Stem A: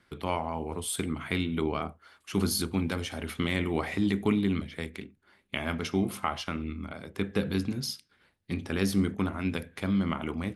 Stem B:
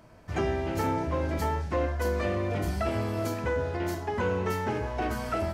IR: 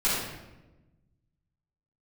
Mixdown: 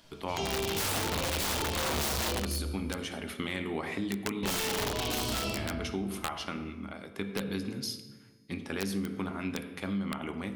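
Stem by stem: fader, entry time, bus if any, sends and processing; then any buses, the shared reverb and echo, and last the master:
+2.0 dB, 0.00 s, send -20.5 dB, bass shelf 140 Hz -10.5 dB; feedback comb 110 Hz, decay 1.9 s, mix 40%
-11.0 dB, 0.00 s, muted 2.26–4.43 s, send -9 dB, resonant high shelf 2.4 kHz +11.5 dB, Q 3; de-hum 45.11 Hz, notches 4; level rider gain up to 11 dB; auto duck -6 dB, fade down 1.10 s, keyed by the first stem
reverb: on, RT60 1.1 s, pre-delay 3 ms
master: integer overflow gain 18 dB; compression, threshold -29 dBFS, peak gain reduction 8 dB

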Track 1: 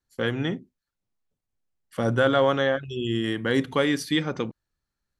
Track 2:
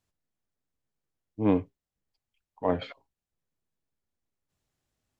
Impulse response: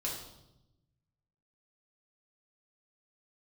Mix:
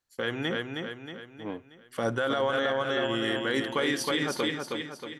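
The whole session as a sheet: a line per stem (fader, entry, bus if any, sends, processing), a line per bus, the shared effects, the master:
+1.0 dB, 0.00 s, no send, echo send -4.5 dB, none
-5.5 dB, 0.00 s, no send, no echo send, auto duck -11 dB, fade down 0.60 s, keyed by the first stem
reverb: none
echo: feedback delay 316 ms, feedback 48%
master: bass shelf 280 Hz -12 dB; peak limiter -17 dBFS, peak gain reduction 10 dB

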